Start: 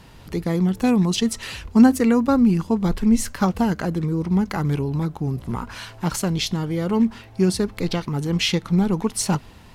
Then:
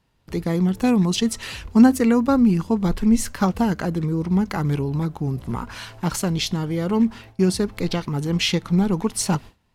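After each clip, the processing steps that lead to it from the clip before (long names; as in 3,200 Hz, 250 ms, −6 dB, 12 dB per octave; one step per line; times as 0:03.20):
noise gate with hold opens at −32 dBFS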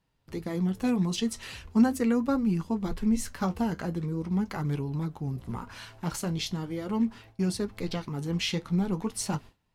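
flanger 0.41 Hz, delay 6 ms, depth 7.4 ms, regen −54%
level −4.5 dB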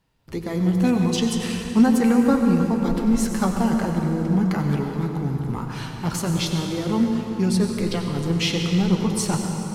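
convolution reverb RT60 3.7 s, pre-delay 78 ms, DRR 2.5 dB
level +6 dB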